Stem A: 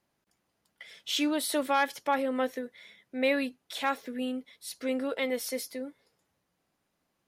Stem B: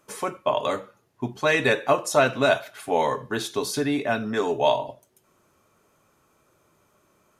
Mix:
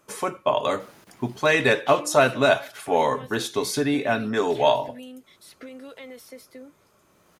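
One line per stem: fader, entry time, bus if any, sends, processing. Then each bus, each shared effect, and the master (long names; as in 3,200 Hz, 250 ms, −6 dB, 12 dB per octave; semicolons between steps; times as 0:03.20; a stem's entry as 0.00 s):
+2.0 dB, 0.80 s, no send, brickwall limiter −24 dBFS, peak gain reduction 9.5 dB; multiband upward and downward compressor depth 100%; automatic ducking −11 dB, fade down 2.00 s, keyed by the second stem
+1.5 dB, 0.00 s, no send, no processing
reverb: not used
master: no processing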